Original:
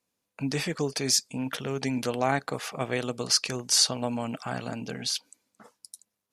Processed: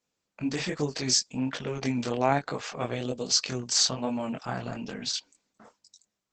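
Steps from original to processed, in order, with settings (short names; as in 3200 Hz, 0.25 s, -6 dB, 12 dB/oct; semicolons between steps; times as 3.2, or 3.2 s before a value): 2.92–3.37 band shelf 1400 Hz -9 dB; chorus 1.2 Hz, delay 20 ms, depth 5.6 ms; gain +3 dB; Opus 12 kbps 48000 Hz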